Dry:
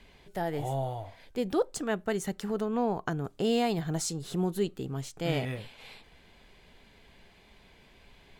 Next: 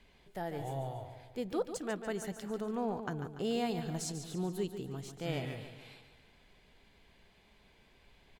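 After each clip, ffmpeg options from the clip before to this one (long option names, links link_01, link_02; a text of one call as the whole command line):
ffmpeg -i in.wav -af "aecho=1:1:144|288|432|576|720|864:0.335|0.167|0.0837|0.0419|0.0209|0.0105,volume=-7dB" out.wav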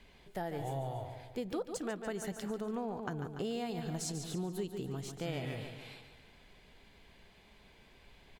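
ffmpeg -i in.wav -af "acompressor=threshold=-38dB:ratio=4,volume=3.5dB" out.wav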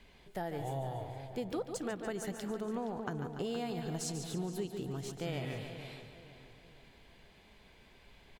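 ffmpeg -i in.wav -filter_complex "[0:a]asplit=2[link_01][link_02];[link_02]adelay=469,lowpass=frequency=4300:poles=1,volume=-12dB,asplit=2[link_03][link_04];[link_04]adelay=469,lowpass=frequency=4300:poles=1,volume=0.42,asplit=2[link_05][link_06];[link_06]adelay=469,lowpass=frequency=4300:poles=1,volume=0.42,asplit=2[link_07][link_08];[link_08]adelay=469,lowpass=frequency=4300:poles=1,volume=0.42[link_09];[link_01][link_03][link_05][link_07][link_09]amix=inputs=5:normalize=0" out.wav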